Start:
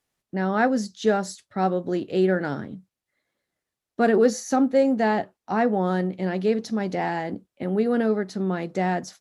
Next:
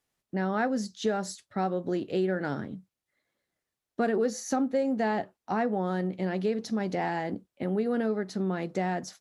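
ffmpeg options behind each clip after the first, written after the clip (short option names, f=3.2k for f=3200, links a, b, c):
-af "acompressor=threshold=-23dB:ratio=3,volume=-2dB"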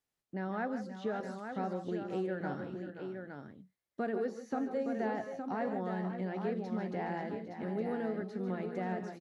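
-filter_complex "[0:a]acrossover=split=3000[a][b];[b]acompressor=threshold=-57dB:ratio=4:attack=1:release=60[c];[a][c]amix=inputs=2:normalize=0,aecho=1:1:141|158|528|545|866:0.237|0.237|0.266|0.2|0.473,volume=-8.5dB"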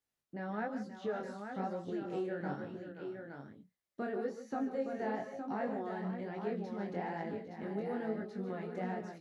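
-af "flanger=delay=18:depth=6.9:speed=1.1,volume=1dB"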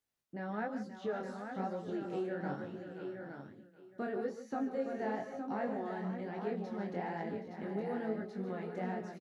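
-af "aecho=1:1:771:0.188"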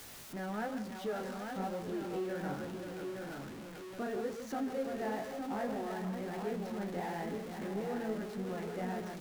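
-af "aeval=exprs='val(0)+0.5*0.00944*sgn(val(0))':c=same,volume=-2dB"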